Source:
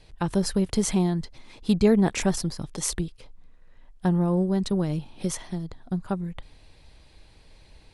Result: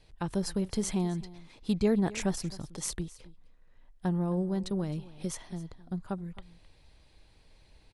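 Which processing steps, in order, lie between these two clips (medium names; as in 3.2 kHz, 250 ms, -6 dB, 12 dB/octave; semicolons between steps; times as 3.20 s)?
delay 263 ms -19 dB; trim -7 dB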